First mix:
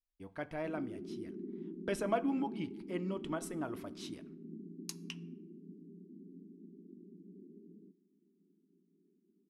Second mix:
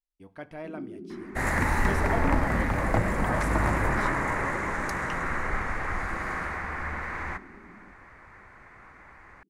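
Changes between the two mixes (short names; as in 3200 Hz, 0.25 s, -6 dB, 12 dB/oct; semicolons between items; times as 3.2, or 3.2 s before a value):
first sound +4.0 dB; second sound: unmuted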